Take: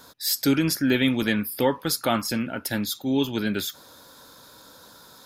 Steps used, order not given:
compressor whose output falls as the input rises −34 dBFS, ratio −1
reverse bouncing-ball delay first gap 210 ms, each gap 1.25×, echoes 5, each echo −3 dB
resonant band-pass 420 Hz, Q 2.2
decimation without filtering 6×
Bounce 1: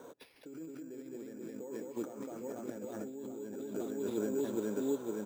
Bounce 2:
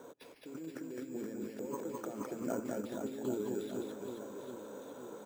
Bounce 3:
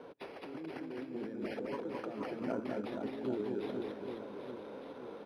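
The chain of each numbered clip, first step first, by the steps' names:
reverse bouncing-ball delay, then compressor whose output falls as the input rises, then resonant band-pass, then decimation without filtering
compressor whose output falls as the input rises, then resonant band-pass, then decimation without filtering, then reverse bouncing-ball delay
compressor whose output falls as the input rises, then reverse bouncing-ball delay, then decimation without filtering, then resonant band-pass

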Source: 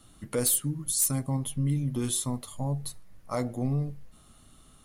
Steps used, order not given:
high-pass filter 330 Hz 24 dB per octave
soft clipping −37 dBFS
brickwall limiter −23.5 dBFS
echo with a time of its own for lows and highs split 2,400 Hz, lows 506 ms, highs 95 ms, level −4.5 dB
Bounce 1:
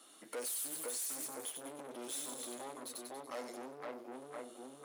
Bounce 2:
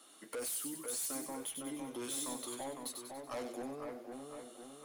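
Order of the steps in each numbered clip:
echo with a time of its own for lows and highs, then brickwall limiter, then soft clipping, then high-pass filter
brickwall limiter, then high-pass filter, then soft clipping, then echo with a time of its own for lows and highs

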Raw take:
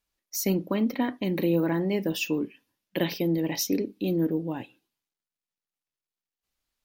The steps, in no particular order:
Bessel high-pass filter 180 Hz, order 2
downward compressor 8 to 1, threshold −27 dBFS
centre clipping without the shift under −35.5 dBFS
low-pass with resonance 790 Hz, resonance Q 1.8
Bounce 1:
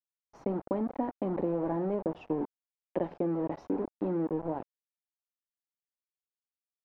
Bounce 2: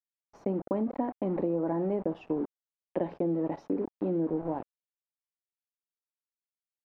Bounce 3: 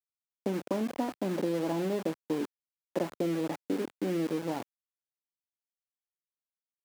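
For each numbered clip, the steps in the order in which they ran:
downward compressor, then Bessel high-pass filter, then centre clipping without the shift, then low-pass with resonance
Bessel high-pass filter, then centre clipping without the shift, then downward compressor, then low-pass with resonance
downward compressor, then low-pass with resonance, then centre clipping without the shift, then Bessel high-pass filter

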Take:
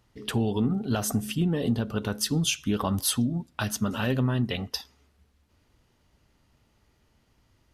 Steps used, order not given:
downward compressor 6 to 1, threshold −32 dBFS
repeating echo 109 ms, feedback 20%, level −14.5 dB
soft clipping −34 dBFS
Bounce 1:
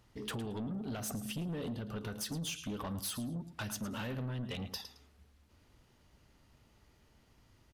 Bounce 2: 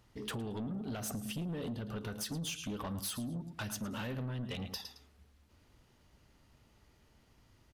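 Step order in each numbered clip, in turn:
downward compressor, then repeating echo, then soft clipping
repeating echo, then downward compressor, then soft clipping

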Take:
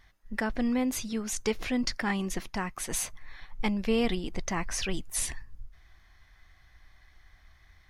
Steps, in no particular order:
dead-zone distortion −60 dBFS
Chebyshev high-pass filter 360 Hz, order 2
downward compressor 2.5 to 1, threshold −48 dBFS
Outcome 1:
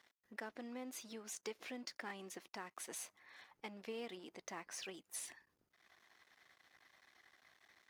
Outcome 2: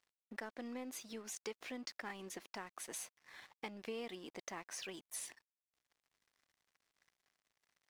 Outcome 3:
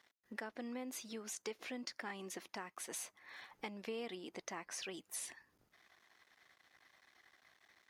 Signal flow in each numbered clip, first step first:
downward compressor, then dead-zone distortion, then Chebyshev high-pass filter
Chebyshev high-pass filter, then downward compressor, then dead-zone distortion
dead-zone distortion, then Chebyshev high-pass filter, then downward compressor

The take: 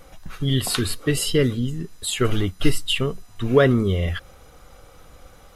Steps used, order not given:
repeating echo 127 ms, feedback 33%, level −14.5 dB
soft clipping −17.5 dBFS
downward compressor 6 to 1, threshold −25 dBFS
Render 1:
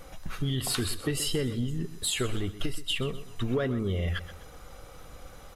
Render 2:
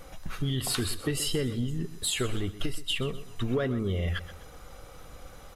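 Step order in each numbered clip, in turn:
downward compressor, then repeating echo, then soft clipping
downward compressor, then soft clipping, then repeating echo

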